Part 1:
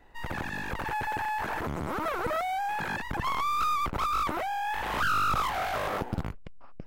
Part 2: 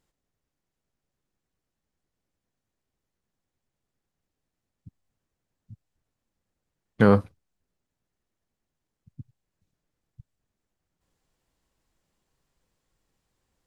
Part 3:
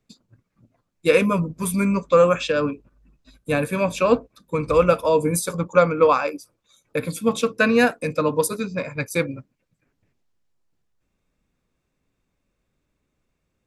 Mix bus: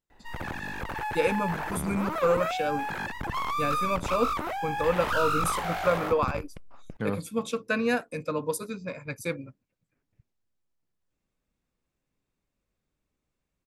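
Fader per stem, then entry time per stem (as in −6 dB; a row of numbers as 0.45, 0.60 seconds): −1.0, −13.5, −9.0 decibels; 0.10, 0.00, 0.10 seconds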